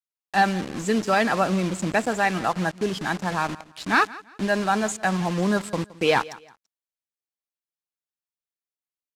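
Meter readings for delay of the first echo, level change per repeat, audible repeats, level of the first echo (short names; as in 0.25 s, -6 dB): 0.168 s, -11.0 dB, 2, -20.0 dB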